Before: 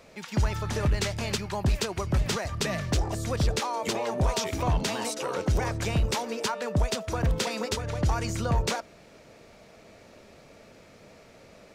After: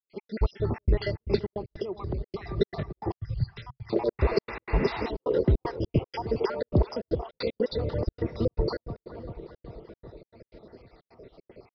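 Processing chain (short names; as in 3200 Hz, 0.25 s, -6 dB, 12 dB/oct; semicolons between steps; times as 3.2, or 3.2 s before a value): random spectral dropouts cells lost 59%; dark delay 0.39 s, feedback 64%, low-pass 2100 Hz, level -14 dB; in parallel at -8 dB: overloaded stage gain 22.5 dB; 4.17–5.09 on the sum: painted sound noise 790–2800 Hz -33 dBFS; small resonant body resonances 380/2000 Hz, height 11 dB, ringing for 25 ms; step gate ".x.xxxxx.xxx.xx" 154 bpm -60 dB; 1.56–2.57 compressor 12:1, threshold -28 dBFS, peak gain reduction 12 dB; 3.14–3.93 EQ curve 130 Hz 0 dB, 280 Hz -29 dB, 500 Hz -28 dB, 1100 Hz -8 dB; downsampling 11025 Hz; bell 2200 Hz -10.5 dB 1.7 oct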